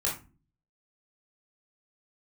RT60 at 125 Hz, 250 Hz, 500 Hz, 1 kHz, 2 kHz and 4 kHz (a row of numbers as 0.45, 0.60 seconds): 0.70, 0.60, 0.35, 0.30, 0.25, 0.20 seconds